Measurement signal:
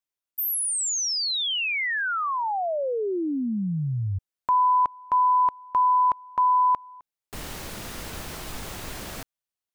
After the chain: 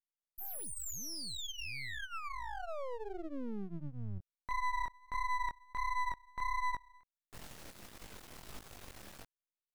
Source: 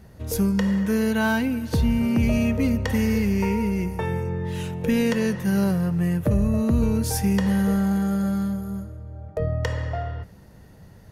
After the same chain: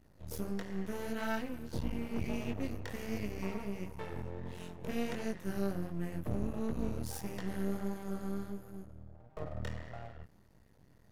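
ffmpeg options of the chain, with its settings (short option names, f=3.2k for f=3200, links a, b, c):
-af "flanger=delay=18:depth=7.3:speed=1.5,aeval=exprs='max(val(0),0)':c=same,volume=-9dB"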